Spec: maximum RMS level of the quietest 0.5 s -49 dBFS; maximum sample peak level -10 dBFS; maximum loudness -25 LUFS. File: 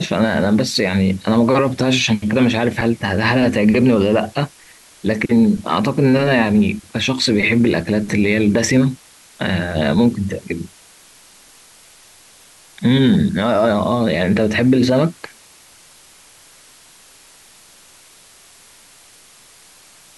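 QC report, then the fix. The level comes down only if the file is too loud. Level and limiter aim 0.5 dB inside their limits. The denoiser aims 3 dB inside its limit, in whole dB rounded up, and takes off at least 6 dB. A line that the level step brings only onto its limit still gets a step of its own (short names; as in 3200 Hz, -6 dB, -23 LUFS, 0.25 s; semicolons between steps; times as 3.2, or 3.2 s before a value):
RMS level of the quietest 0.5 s -47 dBFS: fail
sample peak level -5.5 dBFS: fail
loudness -16.5 LUFS: fail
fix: gain -9 dB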